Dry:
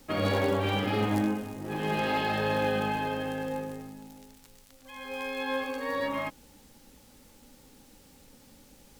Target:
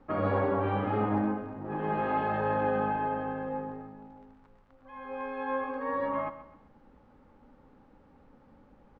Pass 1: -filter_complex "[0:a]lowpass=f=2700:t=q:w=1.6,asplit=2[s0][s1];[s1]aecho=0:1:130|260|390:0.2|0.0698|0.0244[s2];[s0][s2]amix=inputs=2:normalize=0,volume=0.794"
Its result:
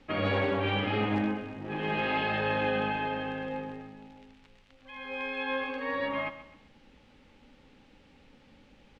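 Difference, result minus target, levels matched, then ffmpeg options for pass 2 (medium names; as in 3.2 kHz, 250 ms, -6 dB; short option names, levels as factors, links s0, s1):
2 kHz band +6.5 dB
-filter_complex "[0:a]lowpass=f=1200:t=q:w=1.6,asplit=2[s0][s1];[s1]aecho=0:1:130|260|390:0.2|0.0698|0.0244[s2];[s0][s2]amix=inputs=2:normalize=0,volume=0.794"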